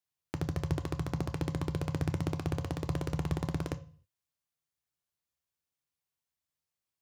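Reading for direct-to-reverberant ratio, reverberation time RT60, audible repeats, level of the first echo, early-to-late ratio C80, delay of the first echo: 8.5 dB, 0.40 s, none, none, 21.0 dB, none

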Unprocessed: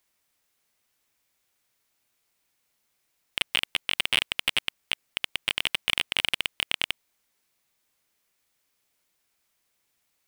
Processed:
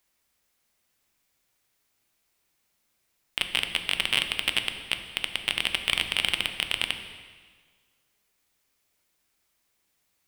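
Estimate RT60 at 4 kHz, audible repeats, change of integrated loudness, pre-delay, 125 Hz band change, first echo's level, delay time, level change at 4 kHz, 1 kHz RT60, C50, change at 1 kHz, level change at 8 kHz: 1.5 s, none, +0.5 dB, 4 ms, +3.5 dB, none, none, +0.5 dB, 1.6 s, 8.5 dB, +1.0 dB, +0.5 dB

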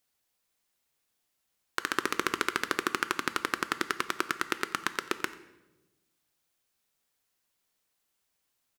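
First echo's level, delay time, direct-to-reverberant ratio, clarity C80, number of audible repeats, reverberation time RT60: -21.0 dB, 90 ms, 11.5 dB, 15.5 dB, 1, 1.1 s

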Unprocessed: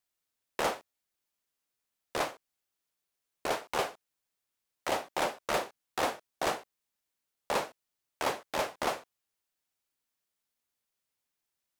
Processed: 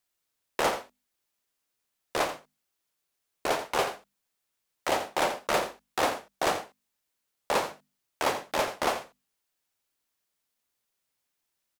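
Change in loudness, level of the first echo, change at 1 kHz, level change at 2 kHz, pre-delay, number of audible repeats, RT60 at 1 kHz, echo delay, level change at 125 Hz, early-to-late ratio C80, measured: +4.5 dB, -11.5 dB, +4.5 dB, +4.5 dB, none, 1, none, 85 ms, +3.5 dB, none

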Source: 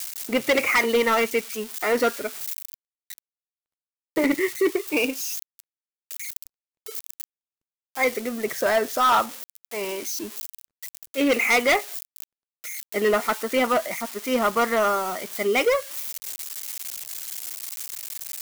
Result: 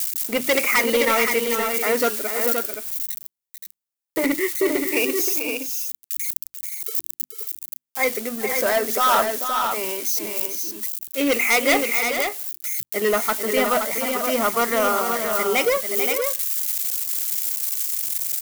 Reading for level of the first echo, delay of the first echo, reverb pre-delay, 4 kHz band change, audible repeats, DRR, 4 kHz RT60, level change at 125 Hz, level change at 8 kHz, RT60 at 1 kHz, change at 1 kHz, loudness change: -8.5 dB, 0.441 s, none, +3.5 dB, 2, none, none, n/a, +7.0 dB, none, +1.5 dB, +3.0 dB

